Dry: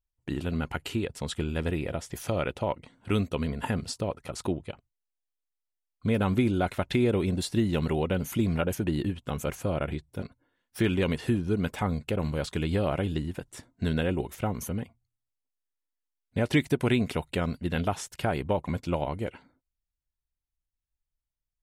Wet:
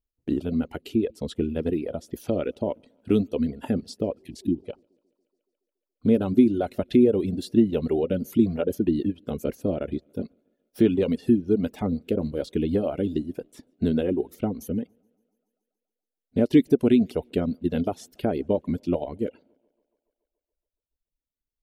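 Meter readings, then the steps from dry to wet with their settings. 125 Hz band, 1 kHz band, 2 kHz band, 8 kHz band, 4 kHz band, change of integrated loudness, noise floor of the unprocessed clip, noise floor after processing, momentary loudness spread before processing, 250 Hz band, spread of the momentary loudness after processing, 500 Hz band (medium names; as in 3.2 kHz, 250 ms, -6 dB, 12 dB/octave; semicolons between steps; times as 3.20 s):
-2.5 dB, -4.0 dB, -8.0 dB, no reading, -5.0 dB, +4.5 dB, under -85 dBFS, under -85 dBFS, 10 LU, +6.5 dB, 11 LU, +5.0 dB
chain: band-stop 530 Hz, Q 15; thinning echo 141 ms, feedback 65%, high-pass 150 Hz, level -24 dB; spectral replace 4.20–4.58 s, 350–1600 Hz after; graphic EQ 125/250/500/1000/2000/8000 Hz -5/+10/+8/-9/-7/-9 dB; reverb removal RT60 1.1 s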